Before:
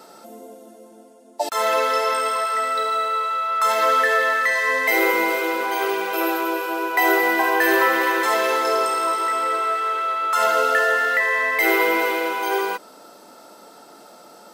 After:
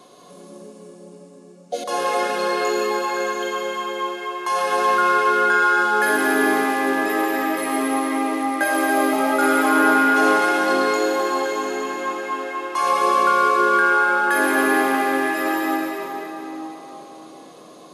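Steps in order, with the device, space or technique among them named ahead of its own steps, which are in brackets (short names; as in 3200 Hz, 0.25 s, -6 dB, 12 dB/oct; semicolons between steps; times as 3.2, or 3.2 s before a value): slowed and reverbed (varispeed -19%; reverb RT60 4.1 s, pre-delay 0.102 s, DRR -1 dB); gain -3 dB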